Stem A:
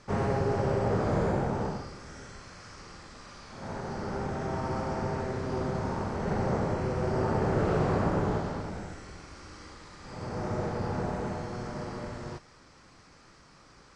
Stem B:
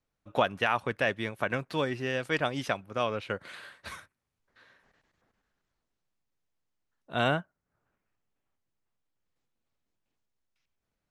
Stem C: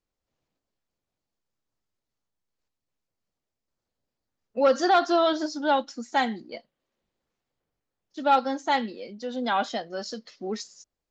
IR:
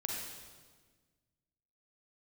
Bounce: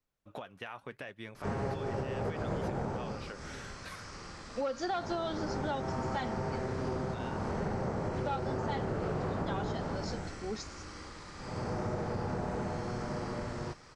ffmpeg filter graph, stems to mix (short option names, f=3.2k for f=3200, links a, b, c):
-filter_complex "[0:a]adelay=1350,volume=1dB[a];[1:a]acompressor=threshold=-33dB:ratio=6,alimiter=limit=-22.5dB:level=0:latency=1:release=345,flanger=delay=0.5:depth=7.5:regen=-79:speed=0.82:shape=triangular,volume=-0.5dB,asplit=2[b][c];[2:a]volume=-6.5dB[d];[c]apad=whole_len=674935[e];[a][e]sidechaincompress=threshold=-44dB:ratio=8:attack=23:release=187[f];[f][b][d]amix=inputs=3:normalize=0,acompressor=threshold=-31dB:ratio=6"